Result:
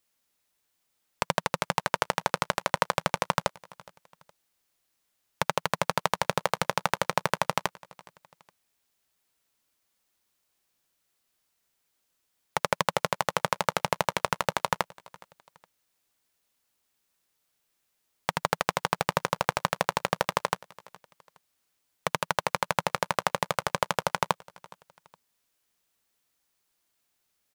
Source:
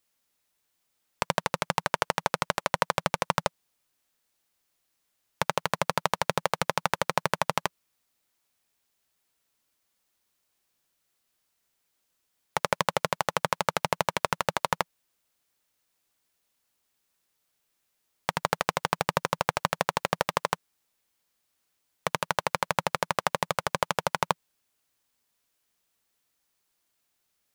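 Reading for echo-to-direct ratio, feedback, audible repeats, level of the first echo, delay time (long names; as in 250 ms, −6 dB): −22.5 dB, 36%, 2, −23.0 dB, 416 ms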